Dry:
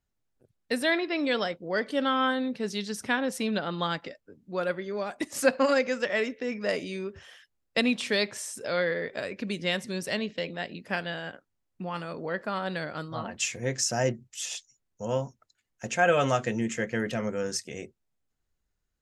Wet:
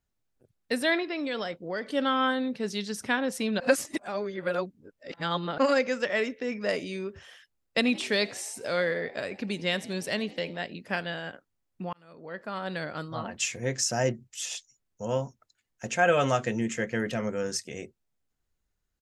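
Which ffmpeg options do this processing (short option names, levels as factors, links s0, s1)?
-filter_complex "[0:a]asettb=1/sr,asplit=3[s0][s1][s2];[s0]atrim=end=1.024[s3];[s1]atrim=start=1.02:end=1.86,asetpts=PTS-STARTPTS,afade=t=in:d=0.004:c=qsin,afade=t=out:st=0.836:d=0.004:c=qsin,acompressor=threshold=0.0355:ratio=3:attack=3.2:release=140:knee=1:detection=peak[s4];[s2]atrim=start=1.856[s5];[s3][s4]acrossfade=d=0.004:c1=hsin:c2=qsin[s6];[s6][s5]acrossfade=d=0.004:c1=qsin:c2=hsin,asplit=3[s7][s8][s9];[s7]afade=t=out:st=7.8:d=0.02[s10];[s8]asplit=6[s11][s12][s13][s14][s15][s16];[s12]adelay=85,afreqshift=69,volume=0.0794[s17];[s13]adelay=170,afreqshift=138,volume=0.0501[s18];[s14]adelay=255,afreqshift=207,volume=0.0316[s19];[s15]adelay=340,afreqshift=276,volume=0.02[s20];[s16]adelay=425,afreqshift=345,volume=0.0124[s21];[s11][s17][s18][s19][s20][s21]amix=inputs=6:normalize=0,afade=t=in:st=7.8:d=0.02,afade=t=out:st=10.63:d=0.02[s22];[s9]afade=t=in:st=10.63:d=0.02[s23];[s10][s22][s23]amix=inputs=3:normalize=0,asplit=4[s24][s25][s26][s27];[s24]atrim=end=3.602[s28];[s25]atrim=start=3.598:end=5.582,asetpts=PTS-STARTPTS,areverse[s29];[s26]atrim=start=5.578:end=11.93,asetpts=PTS-STARTPTS,afade=t=out:st=6.348:d=0.004:c=hsin[s30];[s27]atrim=start=11.93,asetpts=PTS-STARTPTS,afade=t=in:d=0.93[s31];[s28][s29]acrossfade=d=0.004:c1=hsin:c2=hsin[s32];[s30][s31]concat=n=2:v=0:a=1[s33];[s32][s33]acrossfade=d=0.004:c1=hsin:c2=hsin"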